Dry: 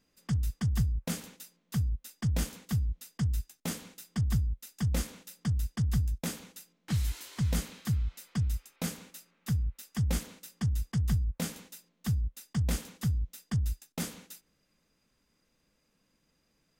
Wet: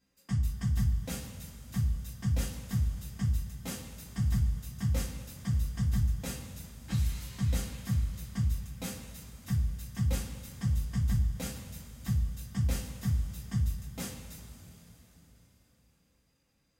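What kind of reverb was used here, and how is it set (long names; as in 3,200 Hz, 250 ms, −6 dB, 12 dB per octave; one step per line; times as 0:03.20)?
coupled-rooms reverb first 0.25 s, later 4.3 s, from −19 dB, DRR −5.5 dB
level −8.5 dB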